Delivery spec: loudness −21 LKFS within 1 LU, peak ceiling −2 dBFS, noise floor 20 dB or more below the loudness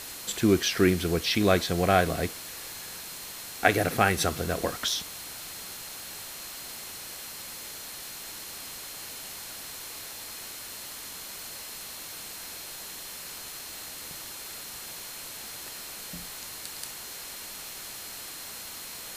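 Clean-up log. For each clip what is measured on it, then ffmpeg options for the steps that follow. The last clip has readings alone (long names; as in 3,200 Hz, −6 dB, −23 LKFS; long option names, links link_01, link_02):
interfering tone 4,200 Hz; level of the tone −49 dBFS; background noise floor −41 dBFS; target noise floor −51 dBFS; integrated loudness −31.0 LKFS; sample peak −4.0 dBFS; target loudness −21.0 LKFS
→ -af "bandreject=frequency=4200:width=30"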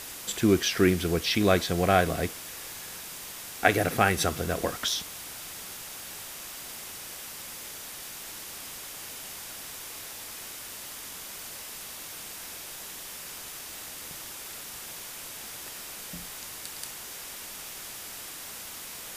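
interfering tone none found; background noise floor −41 dBFS; target noise floor −52 dBFS
→ -af "afftdn=noise_reduction=11:noise_floor=-41"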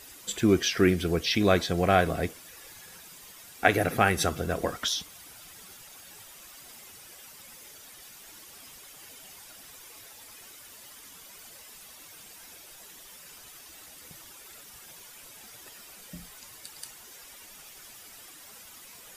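background noise floor −49 dBFS; integrated loudness −25.5 LKFS; sample peak −4.0 dBFS; target loudness −21.0 LKFS
→ -af "volume=4.5dB,alimiter=limit=-2dB:level=0:latency=1"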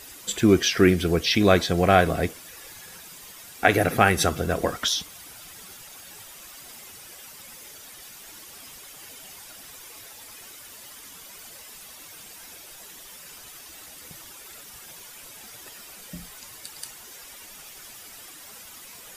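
integrated loudness −21.0 LKFS; sample peak −2.0 dBFS; background noise floor −45 dBFS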